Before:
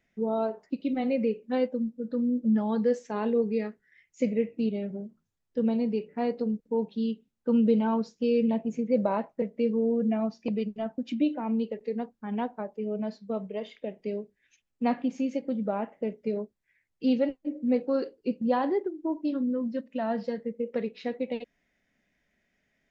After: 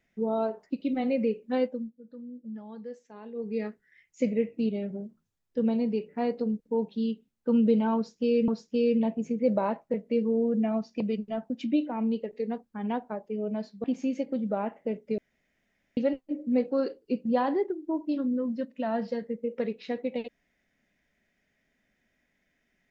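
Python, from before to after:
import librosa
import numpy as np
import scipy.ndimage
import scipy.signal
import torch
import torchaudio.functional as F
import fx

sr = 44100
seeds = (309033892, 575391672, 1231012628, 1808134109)

y = fx.edit(x, sr, fx.fade_down_up(start_s=1.62, length_s=2.05, db=-15.5, fade_s=0.34),
    fx.repeat(start_s=7.96, length_s=0.52, count=2),
    fx.cut(start_s=13.32, length_s=1.68),
    fx.room_tone_fill(start_s=16.34, length_s=0.79), tone=tone)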